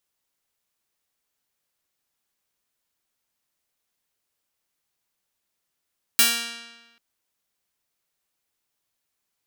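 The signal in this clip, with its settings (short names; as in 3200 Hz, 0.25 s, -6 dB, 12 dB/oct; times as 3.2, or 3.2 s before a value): plucked string A#3, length 0.79 s, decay 1.21 s, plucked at 0.45, bright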